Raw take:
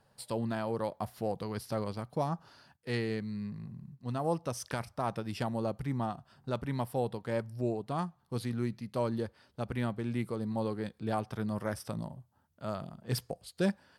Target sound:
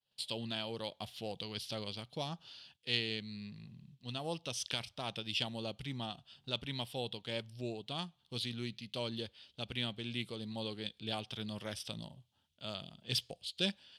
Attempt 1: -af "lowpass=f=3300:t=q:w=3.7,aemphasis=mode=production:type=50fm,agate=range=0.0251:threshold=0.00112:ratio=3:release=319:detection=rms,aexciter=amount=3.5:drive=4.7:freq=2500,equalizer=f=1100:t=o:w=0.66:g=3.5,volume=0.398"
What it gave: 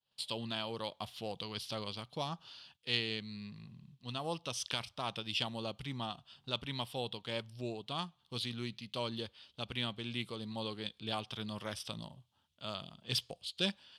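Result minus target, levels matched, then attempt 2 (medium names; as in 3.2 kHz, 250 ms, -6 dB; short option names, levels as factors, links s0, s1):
1 kHz band +3.5 dB
-af "lowpass=f=3300:t=q:w=3.7,aemphasis=mode=production:type=50fm,agate=range=0.0251:threshold=0.00112:ratio=3:release=319:detection=rms,aexciter=amount=3.5:drive=4.7:freq=2500,equalizer=f=1100:t=o:w=0.66:g=-4,volume=0.398"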